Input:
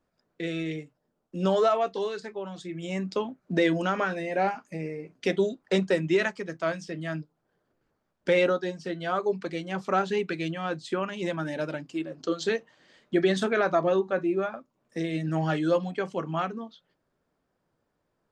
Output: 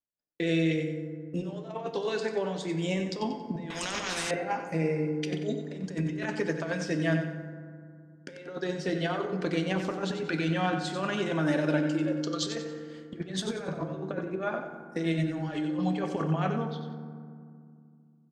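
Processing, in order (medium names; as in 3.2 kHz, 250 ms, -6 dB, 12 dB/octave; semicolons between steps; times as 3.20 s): band-stop 1.3 kHz, Q 19; compressor with a negative ratio -31 dBFS, ratio -0.5; feedback delay 92 ms, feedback 35%, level -8.5 dB; expander -50 dBFS; 10.72–12.42 s: high-pass 130 Hz 24 dB/octave; FDN reverb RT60 2.2 s, low-frequency decay 1.55×, high-frequency decay 0.4×, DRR 7.5 dB; 3.70–4.31 s: spectrum-flattening compressor 4:1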